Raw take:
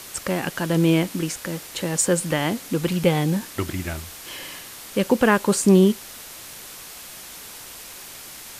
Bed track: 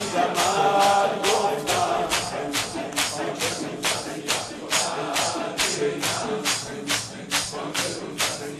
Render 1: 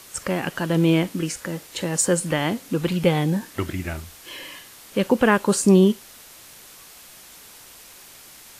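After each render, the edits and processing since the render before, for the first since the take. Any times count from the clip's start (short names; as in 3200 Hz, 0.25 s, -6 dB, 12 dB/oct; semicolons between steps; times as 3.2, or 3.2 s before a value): noise print and reduce 6 dB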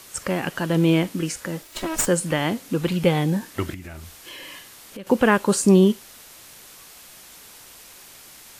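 1.62–2.07 minimum comb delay 3.1 ms; 3.74–5.07 compressor, threshold -34 dBFS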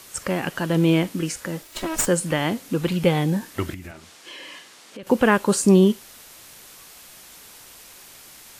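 3.91–5.03 BPF 200–7600 Hz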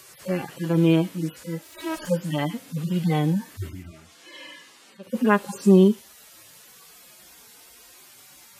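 median-filter separation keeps harmonic; HPF 59 Hz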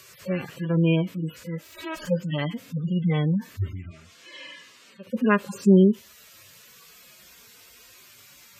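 spectral gate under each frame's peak -30 dB strong; thirty-one-band EQ 100 Hz +7 dB, 315 Hz -7 dB, 800 Hz -11 dB, 2500 Hz +3 dB, 10000 Hz -10 dB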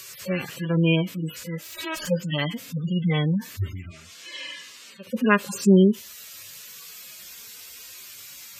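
high shelf 2200 Hz +10.5 dB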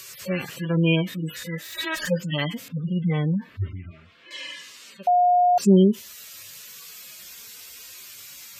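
0.86–2.18 small resonant body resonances 1800/3700 Hz, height 16 dB, ringing for 20 ms; 2.68–4.31 air absorption 470 m; 5.07–5.58 bleep 715 Hz -14.5 dBFS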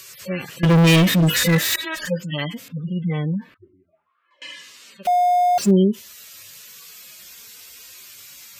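0.63–1.76 sample leveller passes 5; 3.54–4.42 auto-wah 350–1500 Hz, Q 9.7, down, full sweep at -28.5 dBFS; 5.05–5.71 zero-crossing step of -28.5 dBFS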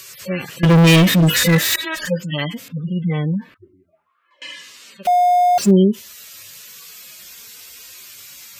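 gain +3 dB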